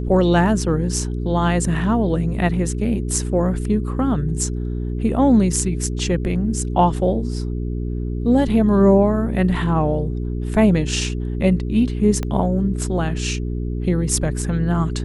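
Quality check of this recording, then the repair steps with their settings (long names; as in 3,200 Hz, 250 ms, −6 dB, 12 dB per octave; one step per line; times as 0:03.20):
mains hum 60 Hz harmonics 7 −24 dBFS
0:12.23: click −12 dBFS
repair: click removal
hum removal 60 Hz, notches 7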